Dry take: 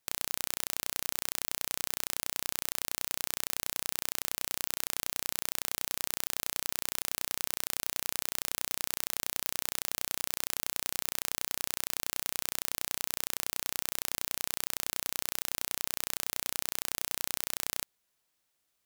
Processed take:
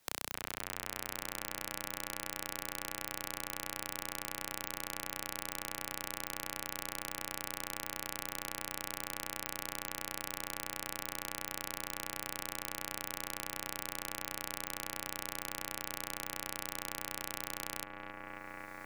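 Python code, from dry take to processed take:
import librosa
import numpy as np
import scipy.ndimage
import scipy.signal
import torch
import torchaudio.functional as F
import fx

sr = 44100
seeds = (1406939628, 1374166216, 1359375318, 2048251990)

p1 = fx.high_shelf(x, sr, hz=2800.0, db=-5.0)
p2 = np.clip(p1, -10.0 ** (-14.0 / 20.0), 10.0 ** (-14.0 / 20.0))
p3 = p2 + fx.echo_bbd(p2, sr, ms=270, stages=4096, feedback_pct=80, wet_db=-6.0, dry=0)
p4 = fx.band_squash(p3, sr, depth_pct=70)
y = F.gain(torch.from_numpy(p4), 2.0).numpy()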